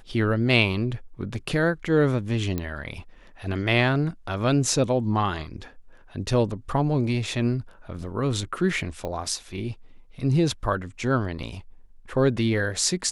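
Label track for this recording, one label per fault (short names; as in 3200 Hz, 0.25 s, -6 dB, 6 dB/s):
2.580000	2.580000	pop -15 dBFS
9.050000	9.050000	pop -20 dBFS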